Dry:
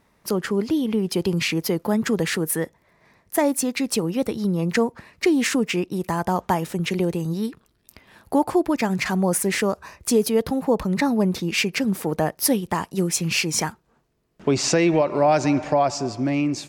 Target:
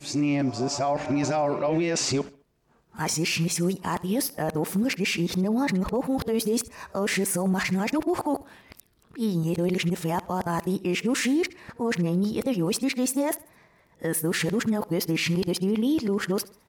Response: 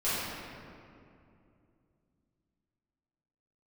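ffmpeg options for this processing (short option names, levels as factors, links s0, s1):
-af "areverse,alimiter=limit=0.133:level=0:latency=1:release=14,aecho=1:1:69|138|207:0.0944|0.0387|0.0159"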